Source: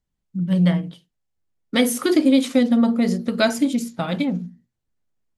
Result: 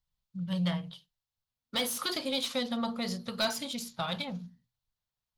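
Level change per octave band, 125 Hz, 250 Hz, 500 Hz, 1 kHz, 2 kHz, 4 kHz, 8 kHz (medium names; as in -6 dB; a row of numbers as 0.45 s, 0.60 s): -13.0 dB, -17.5 dB, -13.5 dB, -7.0 dB, -10.0 dB, -3.0 dB, -7.5 dB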